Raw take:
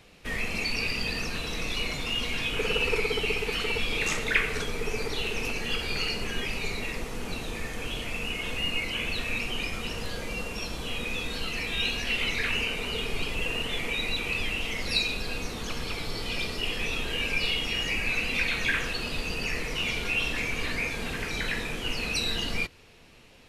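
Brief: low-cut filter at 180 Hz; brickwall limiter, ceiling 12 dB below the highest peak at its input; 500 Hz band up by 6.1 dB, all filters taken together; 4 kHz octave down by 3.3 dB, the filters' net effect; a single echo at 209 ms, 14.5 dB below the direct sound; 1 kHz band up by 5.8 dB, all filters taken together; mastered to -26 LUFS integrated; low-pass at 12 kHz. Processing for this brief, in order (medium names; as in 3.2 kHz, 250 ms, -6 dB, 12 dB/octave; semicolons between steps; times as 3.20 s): high-pass 180 Hz; low-pass 12 kHz; peaking EQ 500 Hz +6 dB; peaking EQ 1 kHz +6 dB; peaking EQ 4 kHz -5.5 dB; peak limiter -21 dBFS; delay 209 ms -14.5 dB; trim +4.5 dB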